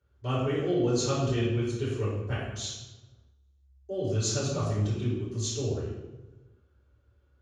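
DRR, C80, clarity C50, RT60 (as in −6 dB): −13.0 dB, 3.0 dB, 0.0 dB, 1.1 s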